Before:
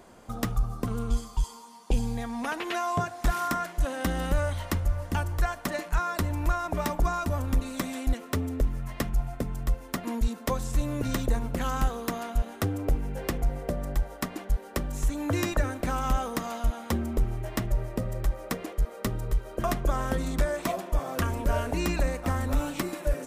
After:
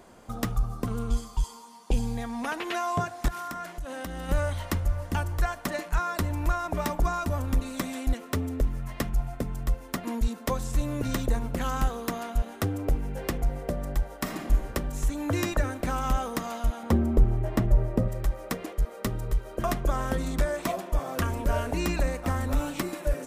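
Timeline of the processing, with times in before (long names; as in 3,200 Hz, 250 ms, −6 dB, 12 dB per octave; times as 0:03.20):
0:03.28–0:04.29: downward compressor 12 to 1, threshold −31 dBFS
0:14.16–0:14.66: thrown reverb, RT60 1.4 s, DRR 1.5 dB
0:16.83–0:18.08: tilt shelving filter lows +6 dB, about 1,400 Hz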